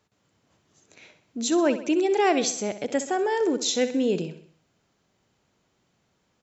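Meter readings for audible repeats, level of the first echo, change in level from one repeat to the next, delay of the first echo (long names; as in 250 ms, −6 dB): 4, −12.5 dB, −6.0 dB, 64 ms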